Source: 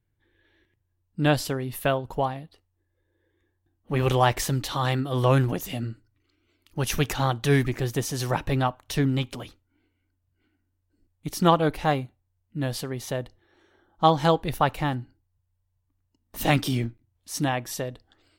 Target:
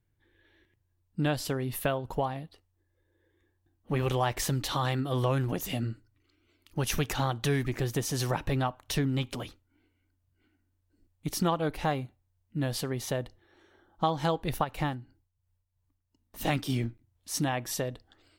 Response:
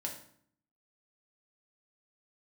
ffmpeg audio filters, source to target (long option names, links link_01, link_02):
-filter_complex "[0:a]asplit=3[link_01][link_02][link_03];[link_01]afade=type=out:start_time=14.63:duration=0.02[link_04];[link_02]tremolo=f=2.9:d=0.63,afade=type=in:start_time=14.63:duration=0.02,afade=type=out:start_time=16.68:duration=0.02[link_05];[link_03]afade=type=in:start_time=16.68:duration=0.02[link_06];[link_04][link_05][link_06]amix=inputs=3:normalize=0,acompressor=threshold=-26dB:ratio=3"